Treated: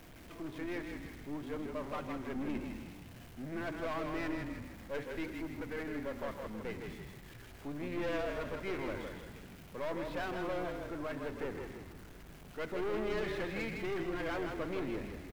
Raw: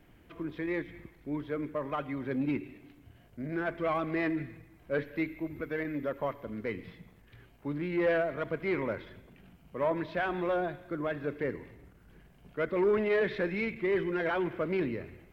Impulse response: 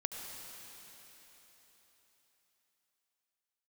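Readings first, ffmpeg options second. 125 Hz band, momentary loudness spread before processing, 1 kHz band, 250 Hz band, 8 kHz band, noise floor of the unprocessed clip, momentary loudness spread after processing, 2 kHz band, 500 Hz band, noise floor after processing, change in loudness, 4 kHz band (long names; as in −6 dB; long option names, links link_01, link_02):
−5.0 dB, 14 LU, −5.5 dB, −6.0 dB, can't be measured, −59 dBFS, 13 LU, −6.5 dB, −7.5 dB, −53 dBFS, −7.0 dB, 0.0 dB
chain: -filter_complex "[0:a]aeval=exprs='val(0)+0.5*0.00668*sgn(val(0))':channel_layout=same,aeval=exprs='(tanh(31.6*val(0)+0.55)-tanh(0.55))/31.6':channel_layout=same,asplit=6[link_01][link_02][link_03][link_04][link_05][link_06];[link_02]adelay=159,afreqshift=-34,volume=-5dB[link_07];[link_03]adelay=318,afreqshift=-68,volume=-12.1dB[link_08];[link_04]adelay=477,afreqshift=-102,volume=-19.3dB[link_09];[link_05]adelay=636,afreqshift=-136,volume=-26.4dB[link_10];[link_06]adelay=795,afreqshift=-170,volume=-33.5dB[link_11];[link_01][link_07][link_08][link_09][link_10][link_11]amix=inputs=6:normalize=0,volume=-4dB"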